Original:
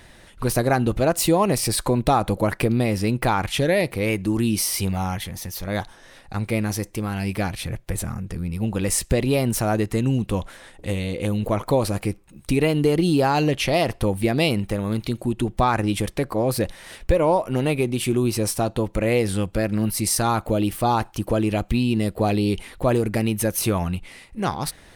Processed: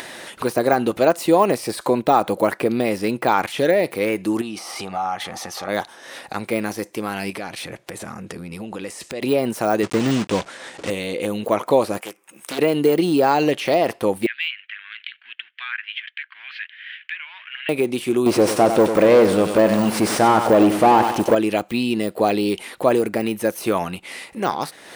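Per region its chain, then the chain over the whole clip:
4.41–5.69 s: low-pass 7.4 kHz + small resonant body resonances 790/1200 Hz, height 14 dB, ringing for 20 ms + compression 4:1, threshold -27 dBFS
7.30–9.22 s: low-pass 10 kHz + compression, threshold -28 dBFS
9.83–10.90 s: block-companded coder 3-bit + low-pass 8.7 kHz 24 dB/octave + bass shelf 240 Hz +7 dB
12.00–12.59 s: high-pass 1.2 kHz 6 dB/octave + peaking EQ 4.2 kHz -13.5 dB 0.41 oct + loudspeaker Doppler distortion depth 0.67 ms
14.26–17.69 s: companding laws mixed up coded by A + elliptic band-pass 1.6–3.2 kHz, stop band 60 dB
18.26–21.35 s: CVSD coder 64 kbps + waveshaping leveller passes 3 + feedback delay 96 ms, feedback 44%, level -10 dB
whole clip: de-esser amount 80%; high-pass 310 Hz 12 dB/octave; upward compressor, threshold -32 dBFS; trim +5.5 dB

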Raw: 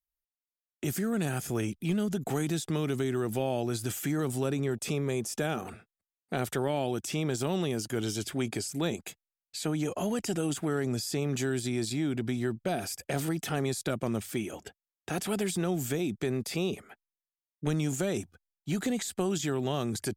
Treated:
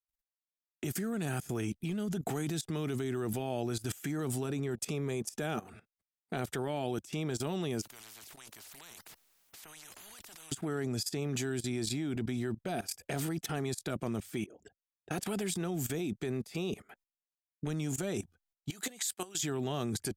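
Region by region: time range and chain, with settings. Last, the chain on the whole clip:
7.82–10.52 s: bass shelf 74 Hz -10 dB + compressor with a negative ratio -43 dBFS + spectrum-flattening compressor 10:1
14.46–15.11 s: resonances exaggerated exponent 2 + compression 10:1, threshold -48 dBFS
18.70–19.43 s: high-pass 950 Hz 6 dB/octave + treble shelf 5.7 kHz +6 dB
whole clip: level held to a coarse grid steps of 18 dB; band-stop 540 Hz, Q 12; trim +2 dB

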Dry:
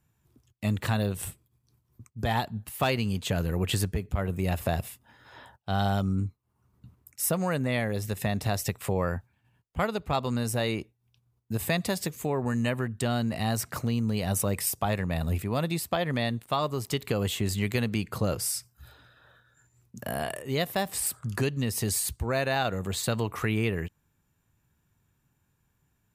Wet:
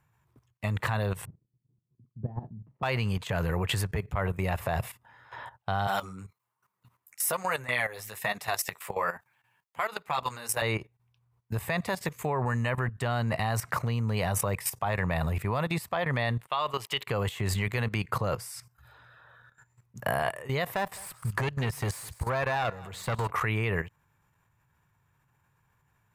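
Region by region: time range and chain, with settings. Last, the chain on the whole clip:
1.25–2.83 s: Butterworth band-pass 210 Hz, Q 1 + doubling 46 ms -11.5 dB
5.87–10.62 s: high-pass 130 Hz + tilt EQ +3 dB/octave + flange 1.2 Hz, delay 4 ms, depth 8.6 ms, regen -10%
16.47–17.07 s: gate -43 dBFS, range -12 dB + high-pass 470 Hz 6 dB/octave + peaking EQ 3 kHz +11 dB 0.6 oct
20.74–23.30 s: valve stage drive 24 dB, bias 0.4 + delay 207 ms -16 dB
whole clip: graphic EQ 125/250/500/1000/2000 Hz +8/-5/+4/+11/+8 dB; level held to a coarse grid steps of 14 dB

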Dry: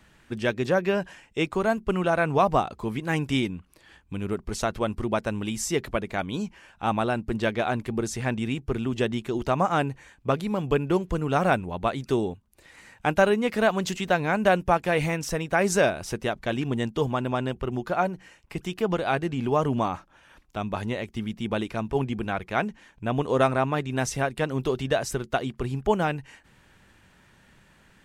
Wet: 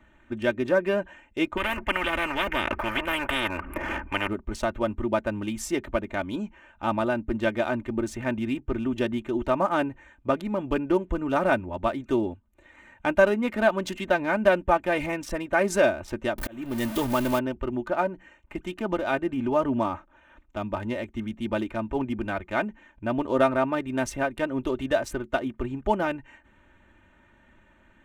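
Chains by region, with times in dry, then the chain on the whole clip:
1.57–4.28 s: Butterworth band-stop 5.2 kHz, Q 0.59 + resonant high shelf 4 kHz -12.5 dB, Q 1.5 + spectrum-flattening compressor 10:1
16.38–17.39 s: jump at every zero crossing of -28.5 dBFS + treble shelf 6.2 kHz +11.5 dB + slow attack 461 ms
whole clip: local Wiener filter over 9 samples; comb 3.3 ms, depth 71%; dynamic bell 6.2 kHz, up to -4 dB, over -43 dBFS, Q 0.71; trim -1.5 dB

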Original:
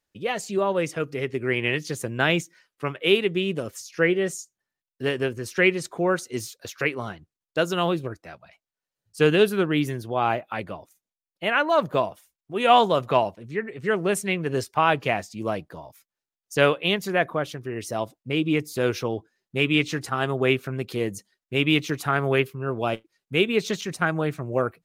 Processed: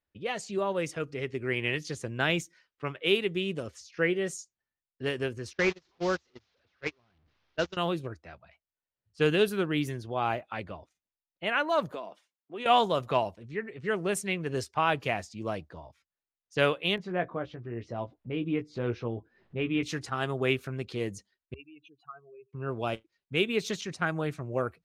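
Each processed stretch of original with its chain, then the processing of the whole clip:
5.53–7.77 s: one-bit delta coder 32 kbps, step -26.5 dBFS + gate -24 dBFS, range -33 dB
11.92–12.66 s: high-pass 210 Hz 24 dB/octave + compression 5:1, threshold -28 dBFS
16.96–19.83 s: tape spacing loss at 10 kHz 35 dB + upward compressor, threshold -34 dBFS + doubling 17 ms -7 dB
21.54–22.53 s: spectral contrast enhancement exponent 3.6 + two resonant band-passes 1.7 kHz, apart 1.3 oct + band-stop 1.4 kHz, Q 14
whole clip: peaking EQ 5.9 kHz +3 dB 2.2 oct; level-controlled noise filter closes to 2.8 kHz, open at -19.5 dBFS; peaking EQ 73 Hz +10.5 dB 0.62 oct; trim -6.5 dB

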